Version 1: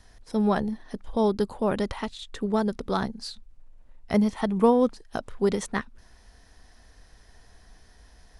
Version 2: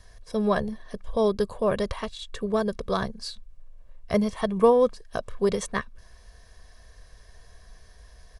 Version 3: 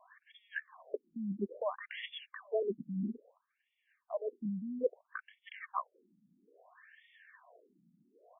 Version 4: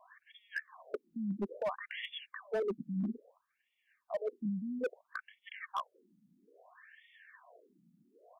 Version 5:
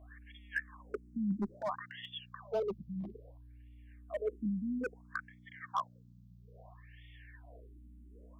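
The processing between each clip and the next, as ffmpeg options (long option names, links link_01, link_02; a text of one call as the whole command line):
ffmpeg -i in.wav -af "aecho=1:1:1.8:0.6" out.wav
ffmpeg -i in.wav -af "areverse,acompressor=threshold=-30dB:ratio=16,areverse,afftfilt=real='re*between(b*sr/1024,210*pow(2600/210,0.5+0.5*sin(2*PI*0.6*pts/sr))/1.41,210*pow(2600/210,0.5+0.5*sin(2*PI*0.6*pts/sr))*1.41)':imag='im*between(b*sr/1024,210*pow(2600/210,0.5+0.5*sin(2*PI*0.6*pts/sr))/1.41,210*pow(2600/210,0.5+0.5*sin(2*PI*0.6*pts/sr))*1.41)':win_size=1024:overlap=0.75,volume=4dB" out.wav
ffmpeg -i in.wav -af "asoftclip=type=hard:threshold=-30.5dB,volume=1.5dB" out.wav
ffmpeg -i in.wav -filter_complex "[0:a]aeval=exprs='val(0)+0.00178*(sin(2*PI*60*n/s)+sin(2*PI*2*60*n/s)/2+sin(2*PI*3*60*n/s)/3+sin(2*PI*4*60*n/s)/4+sin(2*PI*5*60*n/s)/5)':channel_layout=same,asplit=2[link_01][link_02];[link_02]afreqshift=-0.26[link_03];[link_01][link_03]amix=inputs=2:normalize=1,volume=3dB" out.wav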